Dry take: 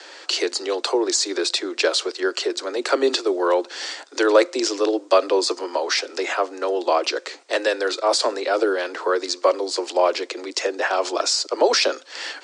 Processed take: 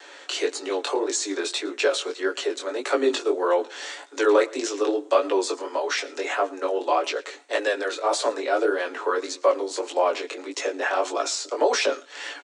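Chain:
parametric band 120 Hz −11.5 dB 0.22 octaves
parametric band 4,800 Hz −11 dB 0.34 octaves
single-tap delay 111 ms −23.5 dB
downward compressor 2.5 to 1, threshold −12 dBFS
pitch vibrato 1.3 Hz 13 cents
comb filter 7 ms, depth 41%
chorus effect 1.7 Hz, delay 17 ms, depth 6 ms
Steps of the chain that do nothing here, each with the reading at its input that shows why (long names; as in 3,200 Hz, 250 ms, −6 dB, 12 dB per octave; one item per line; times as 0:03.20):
parametric band 120 Hz: nothing at its input below 240 Hz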